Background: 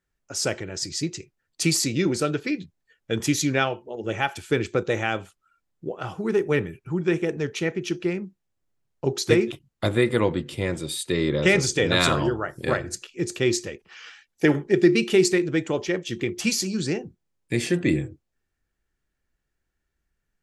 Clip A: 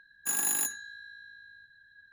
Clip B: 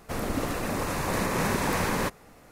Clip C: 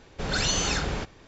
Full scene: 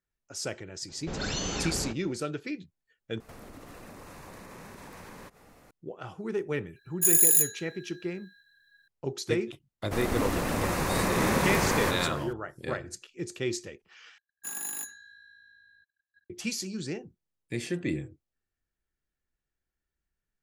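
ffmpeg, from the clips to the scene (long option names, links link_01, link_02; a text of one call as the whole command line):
ffmpeg -i bed.wav -i cue0.wav -i cue1.wav -i cue2.wav -filter_complex "[2:a]asplit=2[link_01][link_02];[1:a]asplit=2[link_03][link_04];[0:a]volume=-9dB[link_05];[3:a]equalizer=frequency=270:width=0.58:gain=6.5[link_06];[link_01]acompressor=threshold=-41dB:ratio=6:attack=3.2:release=140:knee=1:detection=peak[link_07];[link_03]crystalizer=i=9:c=0[link_08];[link_02]aecho=1:1:167|334|501:0.501|0.13|0.0339[link_09];[link_04]agate=range=-30dB:threshold=-57dB:ratio=16:release=65:detection=peak[link_10];[link_05]asplit=3[link_11][link_12][link_13];[link_11]atrim=end=3.204[link_14];[link_07]atrim=end=2.51,asetpts=PTS-STARTPTS,volume=-3.5dB[link_15];[link_12]atrim=start=5.706:end=14.184[link_16];[link_10]atrim=end=2.12,asetpts=PTS-STARTPTS,volume=-7dB[link_17];[link_13]atrim=start=16.296[link_18];[link_06]atrim=end=1.27,asetpts=PTS-STARTPTS,volume=-8dB,afade=type=in:duration=0.004:curve=hsin,afade=type=out:start_time=1.266:duration=0.004:curve=hsin,adelay=880[link_19];[link_08]atrim=end=2.12,asetpts=PTS-STARTPTS,volume=-13.5dB,afade=type=in:duration=0.004:curve=hsin,afade=type=out:start_time=2.116:duration=0.004:curve=hsin,adelay=6760[link_20];[link_09]atrim=end=2.51,asetpts=PTS-STARTPTS,volume=-0.5dB,afade=type=in:duration=0.004:curve=hsin,afade=type=out:start_time=2.506:duration=0.004:curve=hsin,adelay=9820[link_21];[link_14][link_15]acrossfade=duration=0.004:curve1=hsin:curve2=hsin[link_22];[link_22][link_16]acrossfade=duration=0.004:curve1=hsin:curve2=hsin[link_23];[link_23][link_17]acrossfade=duration=0.004:curve1=hsin:curve2=hsin[link_24];[link_24][link_18]acrossfade=duration=0.004:curve1=hsin:curve2=hsin[link_25];[link_25][link_19][link_20][link_21]amix=inputs=4:normalize=0" out.wav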